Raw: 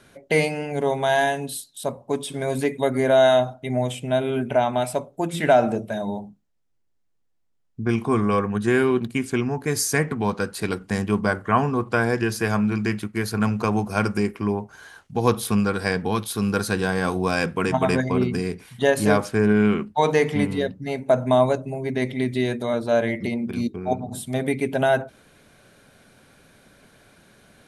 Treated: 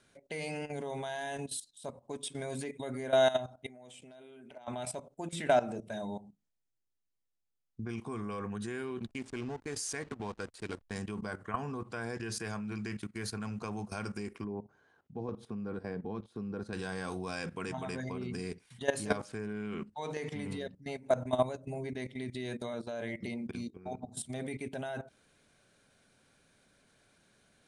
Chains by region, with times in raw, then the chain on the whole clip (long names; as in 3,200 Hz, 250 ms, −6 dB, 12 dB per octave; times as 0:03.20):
0:03.66–0:04.68: high-pass filter 220 Hz + downward compressor 4 to 1, threshold −32 dBFS + gain into a clipping stage and back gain 25 dB
0:09.07–0:10.96: slack as between gear wheels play −29.5 dBFS + parametric band 160 Hz −8 dB 0.61 octaves
0:14.44–0:16.73: resonant band-pass 330 Hz, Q 0.64 + low-shelf EQ 210 Hz +5 dB
whole clip: Butterworth low-pass 10,000 Hz 48 dB per octave; high-shelf EQ 3,500 Hz +6.5 dB; output level in coarse steps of 15 dB; level −8 dB